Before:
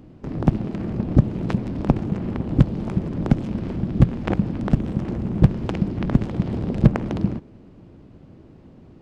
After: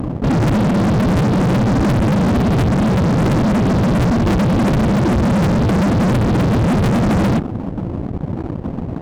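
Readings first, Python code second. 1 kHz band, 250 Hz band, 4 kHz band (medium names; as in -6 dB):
+13.5 dB, +8.0 dB, no reading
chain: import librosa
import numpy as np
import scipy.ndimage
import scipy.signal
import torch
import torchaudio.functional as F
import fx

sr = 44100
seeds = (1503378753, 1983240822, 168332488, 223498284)

y = fx.spec_expand(x, sr, power=1.9)
y = fx.fuzz(y, sr, gain_db=41.0, gate_db=-50.0)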